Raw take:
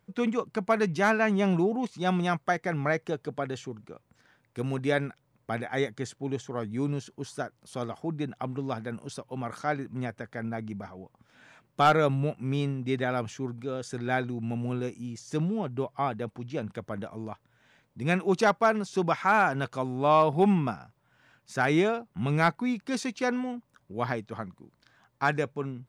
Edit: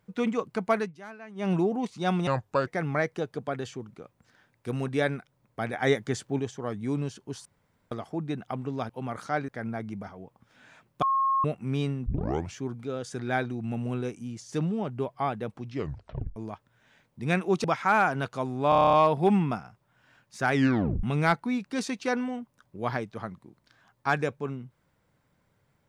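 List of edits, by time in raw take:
0.75–1.52 dip -20 dB, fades 0.17 s
2.27–2.58 speed 77%
5.64–6.3 gain +4.5 dB
7.36–7.82 room tone
8.8–9.24 cut
9.83–10.27 cut
11.81–12.23 bleep 1080 Hz -21.5 dBFS
12.85 tape start 0.48 s
16.46 tape stop 0.69 s
18.43–19.04 cut
20.09 stutter 0.03 s, 9 plays
21.69 tape stop 0.50 s

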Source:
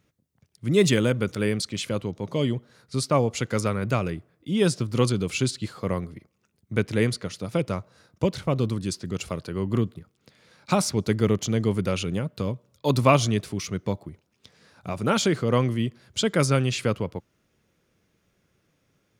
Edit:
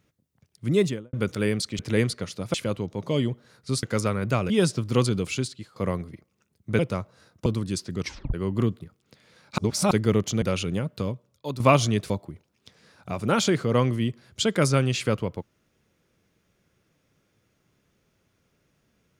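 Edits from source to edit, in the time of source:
0.65–1.13 studio fade out
3.08–3.43 cut
4.1–4.53 cut
5.22–5.79 fade out, to -18 dB
6.82–7.57 move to 1.79
8.24–8.61 cut
9.15 tape stop 0.34 s
10.73–11.06 reverse
11.57–11.82 cut
12.39–13 fade out, to -13.5 dB
13.5–13.88 cut

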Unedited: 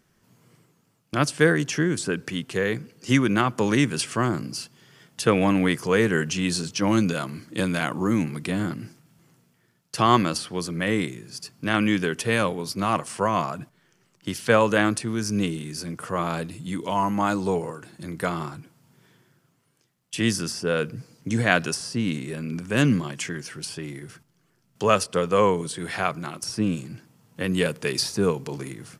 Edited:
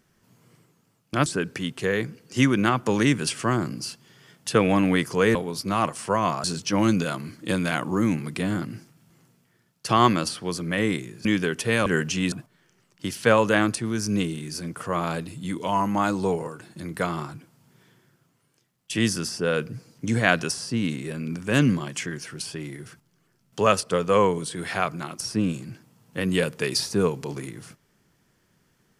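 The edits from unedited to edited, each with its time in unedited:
1.26–1.98 cut
6.07–6.53 swap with 12.46–13.55
11.34–11.85 cut

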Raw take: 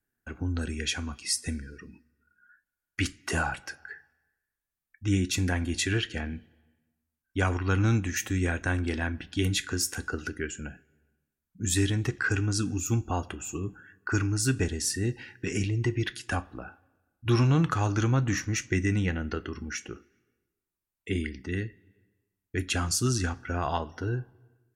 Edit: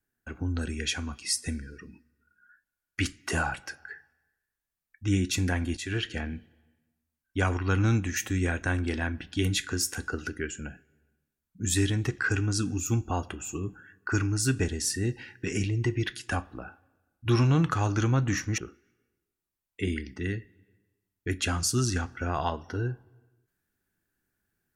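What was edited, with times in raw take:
5.77–6.07 fade in, from -12.5 dB
18.58–19.86 cut

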